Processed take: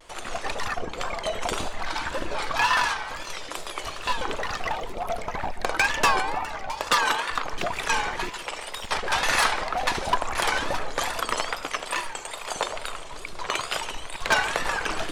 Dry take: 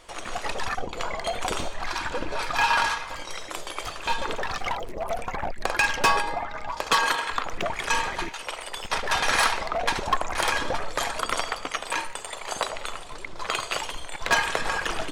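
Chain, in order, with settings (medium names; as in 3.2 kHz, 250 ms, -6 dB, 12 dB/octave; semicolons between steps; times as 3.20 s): two-band feedback delay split 2.7 kHz, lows 146 ms, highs 658 ms, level -14.5 dB; wow and flutter 140 cents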